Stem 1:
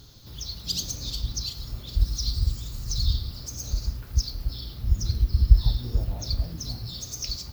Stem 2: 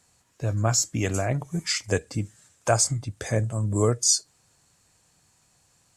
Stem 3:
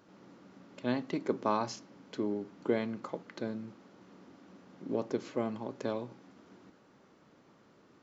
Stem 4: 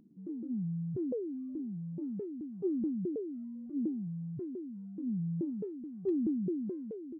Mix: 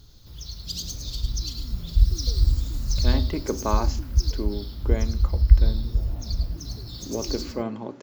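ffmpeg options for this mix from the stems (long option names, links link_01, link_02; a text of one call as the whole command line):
ffmpeg -i stem1.wav -i stem2.wav -i stem3.wav -i stem4.wav -filter_complex "[0:a]volume=-5dB,asplit=2[link_01][link_02];[link_02]volume=-6.5dB[link_03];[2:a]adelay=2200,volume=1dB[link_04];[3:a]adelay=1150,volume=-13dB[link_05];[link_03]aecho=0:1:104:1[link_06];[link_01][link_04][link_05][link_06]amix=inputs=4:normalize=0,lowshelf=frequency=66:gain=10.5,bandreject=frequency=124.2:width_type=h:width=4,bandreject=frequency=248.4:width_type=h:width=4,bandreject=frequency=372.6:width_type=h:width=4,bandreject=frequency=496.8:width_type=h:width=4,bandreject=frequency=621:width_type=h:width=4,bandreject=frequency=745.2:width_type=h:width=4,bandreject=frequency=869.4:width_type=h:width=4,dynaudnorm=framelen=460:gausssize=5:maxgain=3.5dB" out.wav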